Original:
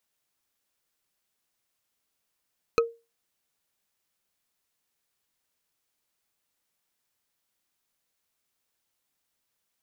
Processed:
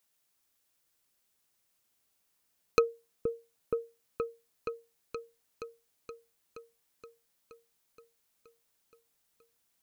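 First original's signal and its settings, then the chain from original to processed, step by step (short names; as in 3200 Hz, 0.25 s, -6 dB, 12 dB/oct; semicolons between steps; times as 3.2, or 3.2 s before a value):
wood hit bar, lowest mode 463 Hz, decay 0.27 s, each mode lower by 3.5 dB, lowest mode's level -15 dB
high shelf 5800 Hz +5 dB; on a send: repeats that get brighter 0.473 s, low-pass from 400 Hz, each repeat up 1 oct, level -3 dB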